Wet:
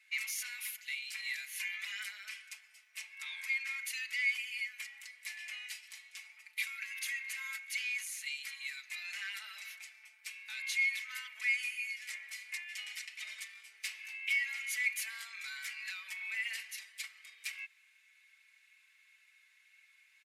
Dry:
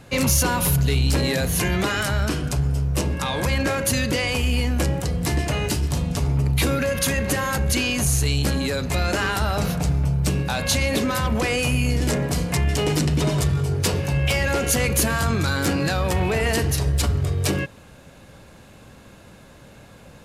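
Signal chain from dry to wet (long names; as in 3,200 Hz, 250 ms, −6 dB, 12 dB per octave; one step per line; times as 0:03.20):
four-pole ladder high-pass 2,000 Hz, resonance 75%
comb filter 4.6 ms, depth 85%
level −9 dB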